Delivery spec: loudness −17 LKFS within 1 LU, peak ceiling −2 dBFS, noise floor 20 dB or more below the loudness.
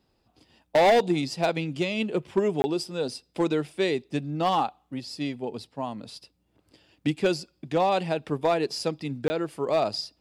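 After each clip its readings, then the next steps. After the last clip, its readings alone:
share of clipped samples 0.9%; peaks flattened at −15.5 dBFS; number of dropouts 2; longest dropout 20 ms; integrated loudness −27.0 LKFS; sample peak −15.5 dBFS; target loudness −17.0 LKFS
→ clipped peaks rebuilt −15.5 dBFS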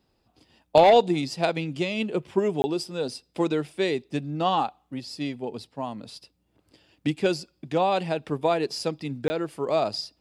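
share of clipped samples 0.0%; number of dropouts 2; longest dropout 20 ms
→ repair the gap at 0:02.62/0:09.28, 20 ms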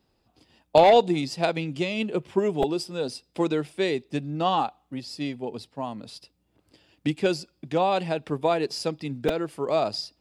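number of dropouts 0; integrated loudness −26.0 LKFS; sample peak −6.5 dBFS; target loudness −17.0 LKFS
→ level +9 dB
brickwall limiter −2 dBFS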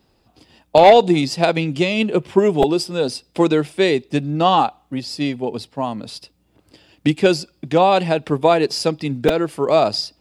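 integrated loudness −17.5 LKFS; sample peak −2.0 dBFS; background noise floor −62 dBFS

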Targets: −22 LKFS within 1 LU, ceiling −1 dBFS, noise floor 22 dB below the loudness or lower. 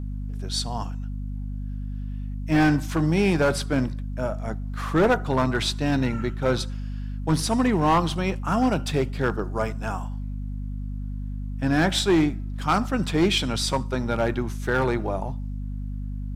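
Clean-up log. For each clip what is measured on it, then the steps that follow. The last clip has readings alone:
share of clipped samples 1.1%; peaks flattened at −14.0 dBFS; mains hum 50 Hz; hum harmonics up to 250 Hz; level of the hum −28 dBFS; integrated loudness −25.0 LKFS; sample peak −14.0 dBFS; target loudness −22.0 LKFS
→ clipped peaks rebuilt −14 dBFS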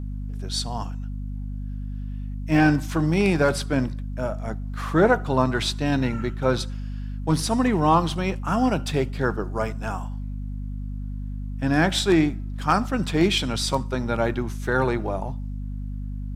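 share of clipped samples 0.0%; mains hum 50 Hz; hum harmonics up to 250 Hz; level of the hum −28 dBFS
→ hum removal 50 Hz, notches 5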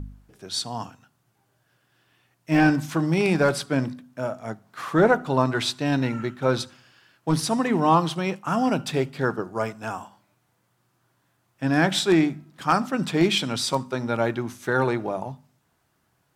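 mains hum none found; integrated loudness −24.0 LKFS; sample peak −6.0 dBFS; target loudness −22.0 LKFS
→ level +2 dB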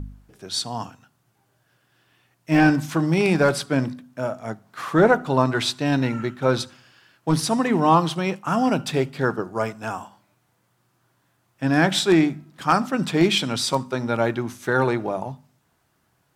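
integrated loudness −22.0 LKFS; sample peak −4.0 dBFS; background noise floor −68 dBFS

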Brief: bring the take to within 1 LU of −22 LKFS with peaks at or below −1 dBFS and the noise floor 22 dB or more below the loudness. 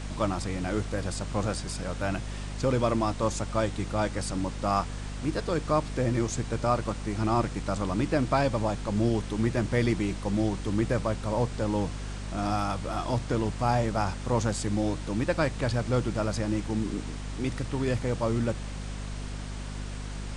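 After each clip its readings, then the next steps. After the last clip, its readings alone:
mains hum 50 Hz; hum harmonics up to 250 Hz; level of the hum −34 dBFS; background noise floor −36 dBFS; target noise floor −52 dBFS; integrated loudness −29.5 LKFS; sample peak −12.0 dBFS; target loudness −22.0 LKFS
→ mains-hum notches 50/100/150/200/250 Hz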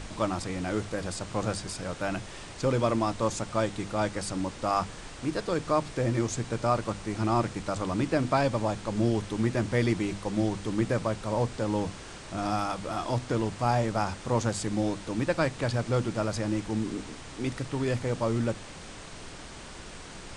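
mains hum none found; background noise floor −44 dBFS; target noise floor −52 dBFS
→ noise reduction from a noise print 8 dB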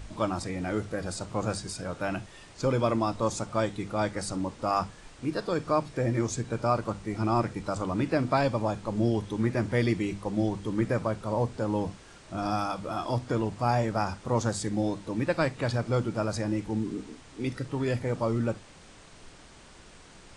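background noise floor −52 dBFS; integrated loudness −30.0 LKFS; sample peak −12.0 dBFS; target loudness −22.0 LKFS
→ level +8 dB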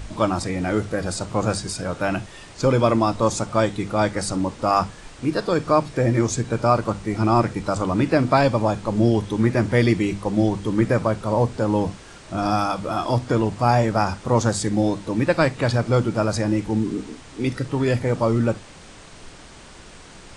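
integrated loudness −22.0 LKFS; sample peak −4.0 dBFS; background noise floor −44 dBFS

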